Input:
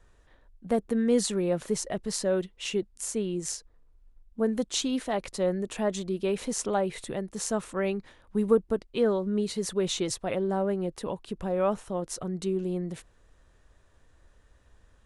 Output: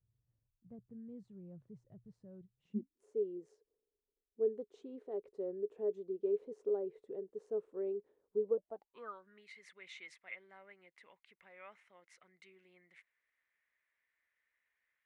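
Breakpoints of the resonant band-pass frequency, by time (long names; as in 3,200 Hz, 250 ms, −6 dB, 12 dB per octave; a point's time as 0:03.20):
resonant band-pass, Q 11
0:02.53 120 Hz
0:03.04 420 Hz
0:08.38 420 Hz
0:09.42 2,100 Hz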